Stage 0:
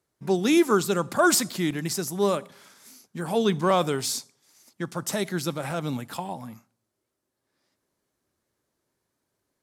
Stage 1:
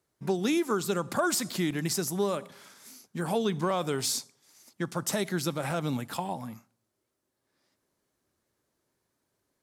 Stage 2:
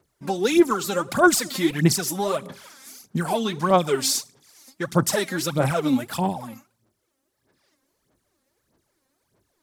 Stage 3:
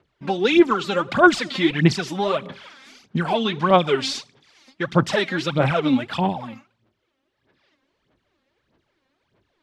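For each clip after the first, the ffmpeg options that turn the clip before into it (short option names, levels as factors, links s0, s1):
-af "acompressor=threshold=0.0631:ratio=6"
-af "aphaser=in_gain=1:out_gain=1:delay=3.8:decay=0.73:speed=1.6:type=sinusoidal,volume=1.5"
-af "lowpass=f=3100:t=q:w=1.8,volume=1.26"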